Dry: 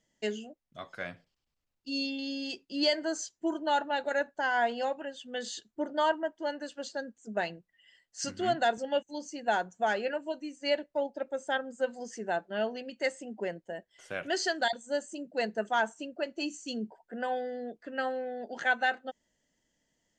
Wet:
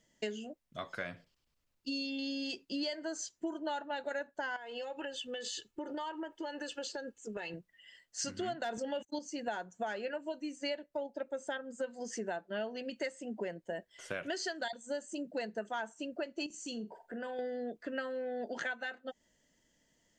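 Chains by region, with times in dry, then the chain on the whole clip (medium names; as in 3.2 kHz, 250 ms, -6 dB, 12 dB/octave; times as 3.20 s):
4.56–7.54 s: peaking EQ 2.8 kHz +7 dB 0.3 oct + comb 2.3 ms, depth 59% + compression 10:1, threshold -39 dBFS
8.61–9.19 s: gate -44 dBFS, range -45 dB + overload inside the chain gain 18.5 dB + level flattener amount 50%
16.46–17.39 s: compression 2.5:1, threshold -45 dBFS + flutter echo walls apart 7.4 m, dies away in 0.22 s
whole clip: compression 6:1, threshold -39 dBFS; band-stop 780 Hz, Q 12; trim +4 dB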